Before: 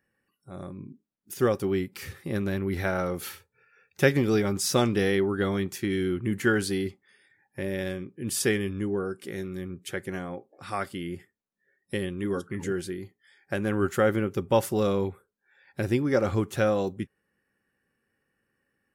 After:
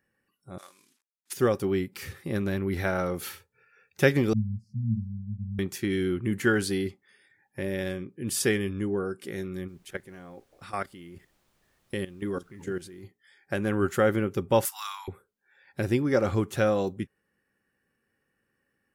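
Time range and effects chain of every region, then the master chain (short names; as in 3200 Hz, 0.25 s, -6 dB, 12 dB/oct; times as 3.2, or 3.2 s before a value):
0.58–1.33 CVSD 64 kbps + HPF 1200 Hz + high shelf 2700 Hz +7 dB
4.33–5.59 brick-wall FIR band-stop 230–4100 Hz + tilt shelf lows +8 dB, about 1400 Hz + octave resonator A, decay 0.2 s
9.67–13.03 level quantiser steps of 15 dB + added noise pink -70 dBFS
14.65–15.08 steep high-pass 860 Hz 72 dB/oct + high shelf 7000 Hz +11 dB
whole clip: dry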